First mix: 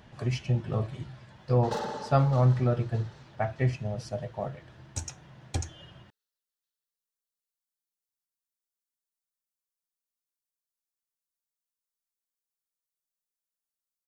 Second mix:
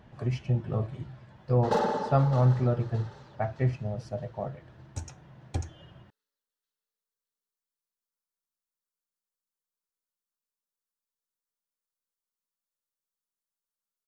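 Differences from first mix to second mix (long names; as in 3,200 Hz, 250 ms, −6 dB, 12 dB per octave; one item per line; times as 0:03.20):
background +8.0 dB
master: add high-shelf EQ 2,200 Hz −10 dB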